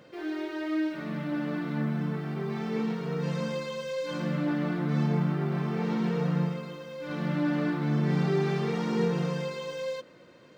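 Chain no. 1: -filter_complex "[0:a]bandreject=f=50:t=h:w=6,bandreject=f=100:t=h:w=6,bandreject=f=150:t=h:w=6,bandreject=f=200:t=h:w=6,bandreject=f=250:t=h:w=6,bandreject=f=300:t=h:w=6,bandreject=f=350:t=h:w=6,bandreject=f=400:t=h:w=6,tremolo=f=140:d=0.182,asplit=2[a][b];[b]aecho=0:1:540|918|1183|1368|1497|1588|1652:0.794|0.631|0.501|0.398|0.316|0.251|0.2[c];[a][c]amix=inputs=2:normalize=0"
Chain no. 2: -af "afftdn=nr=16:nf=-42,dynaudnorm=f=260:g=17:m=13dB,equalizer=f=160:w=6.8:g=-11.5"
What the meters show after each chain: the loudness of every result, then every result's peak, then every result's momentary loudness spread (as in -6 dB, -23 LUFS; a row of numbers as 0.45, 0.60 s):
-27.5, -21.0 LUFS; -11.5, -7.0 dBFS; 6, 15 LU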